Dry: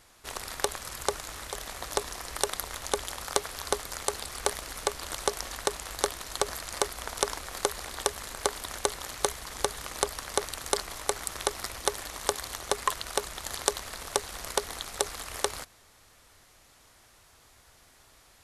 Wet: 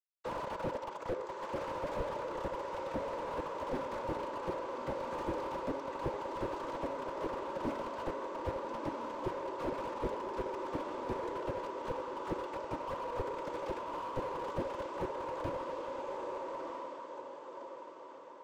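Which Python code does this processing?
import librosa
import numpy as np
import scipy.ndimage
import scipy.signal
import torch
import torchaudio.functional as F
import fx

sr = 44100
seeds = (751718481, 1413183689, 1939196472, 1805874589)

p1 = fx.pitch_ramps(x, sr, semitones=-8.0, every_ms=987)
p2 = fx.dereverb_blind(p1, sr, rt60_s=1.6)
p3 = fx.rider(p2, sr, range_db=4, speed_s=0.5)
p4 = fx.fuzz(p3, sr, gain_db=38.0, gate_db=-40.0)
p5 = fx.noise_vocoder(p4, sr, seeds[0], bands=16)
p6 = fx.double_bandpass(p5, sr, hz=730.0, octaves=0.72)
p7 = p6 + fx.echo_diffused(p6, sr, ms=1246, feedback_pct=44, wet_db=-6.5, dry=0)
p8 = fx.room_shoebox(p7, sr, seeds[1], volume_m3=2500.0, walls='mixed', distance_m=0.71)
p9 = fx.slew_limit(p8, sr, full_power_hz=11.0)
y = p9 * librosa.db_to_amplitude(1.0)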